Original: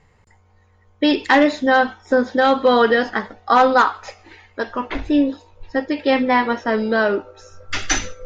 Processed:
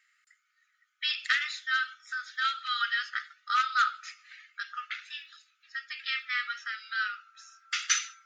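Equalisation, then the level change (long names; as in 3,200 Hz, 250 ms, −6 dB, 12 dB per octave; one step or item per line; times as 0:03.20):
linear-phase brick-wall high-pass 1,200 Hz
dynamic equaliser 1,700 Hz, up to −5 dB, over −34 dBFS, Q 2.6
−4.5 dB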